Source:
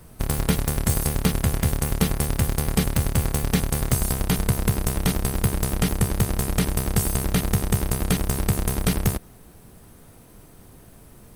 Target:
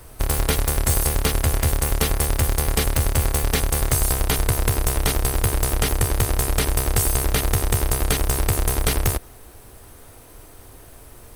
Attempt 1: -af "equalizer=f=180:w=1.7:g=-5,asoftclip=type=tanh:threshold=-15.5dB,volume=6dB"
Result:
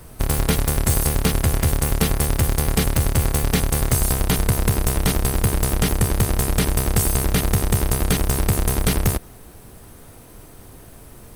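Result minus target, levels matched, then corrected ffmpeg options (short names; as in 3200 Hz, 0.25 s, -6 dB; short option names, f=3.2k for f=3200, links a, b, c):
250 Hz band +5.0 dB
-af "equalizer=f=180:w=1.7:g=-16,asoftclip=type=tanh:threshold=-15.5dB,volume=6dB"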